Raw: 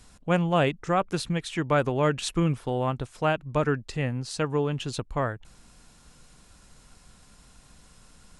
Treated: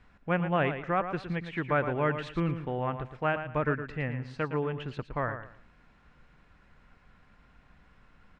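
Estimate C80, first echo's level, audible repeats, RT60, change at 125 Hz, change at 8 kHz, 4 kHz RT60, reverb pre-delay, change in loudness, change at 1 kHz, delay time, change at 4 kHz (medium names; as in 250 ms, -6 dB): no reverb, -9.5 dB, 3, no reverb, -5.0 dB, under -25 dB, no reverb, no reverb, -4.0 dB, -3.0 dB, 113 ms, -11.0 dB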